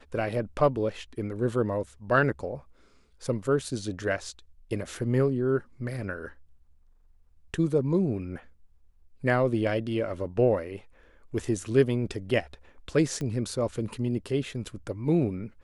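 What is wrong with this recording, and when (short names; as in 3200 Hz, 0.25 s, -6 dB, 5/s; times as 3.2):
13.21 pop -22 dBFS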